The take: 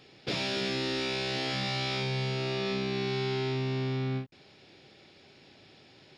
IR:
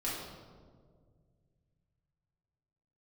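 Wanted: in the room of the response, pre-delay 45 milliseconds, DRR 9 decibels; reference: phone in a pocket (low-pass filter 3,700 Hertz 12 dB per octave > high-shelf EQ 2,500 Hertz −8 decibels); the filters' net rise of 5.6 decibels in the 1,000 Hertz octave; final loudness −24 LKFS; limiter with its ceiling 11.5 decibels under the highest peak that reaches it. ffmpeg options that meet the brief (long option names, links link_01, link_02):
-filter_complex "[0:a]equalizer=frequency=1000:width_type=o:gain=9,alimiter=level_in=6.5dB:limit=-24dB:level=0:latency=1,volume=-6.5dB,asplit=2[link_01][link_02];[1:a]atrim=start_sample=2205,adelay=45[link_03];[link_02][link_03]afir=irnorm=-1:irlink=0,volume=-13.5dB[link_04];[link_01][link_04]amix=inputs=2:normalize=0,lowpass=3700,highshelf=frequency=2500:gain=-8,volume=15dB"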